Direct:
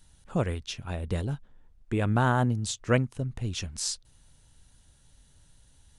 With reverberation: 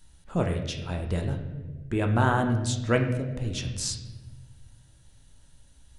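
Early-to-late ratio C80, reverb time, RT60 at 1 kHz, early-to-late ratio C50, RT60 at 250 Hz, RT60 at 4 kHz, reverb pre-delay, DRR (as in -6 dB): 9.5 dB, 1.3 s, 1.1 s, 7.0 dB, 1.8 s, 0.90 s, 3 ms, 3.0 dB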